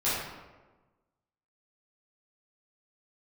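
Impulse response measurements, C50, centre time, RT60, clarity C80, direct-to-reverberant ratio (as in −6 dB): −1.0 dB, 84 ms, 1.2 s, 2.0 dB, −12.0 dB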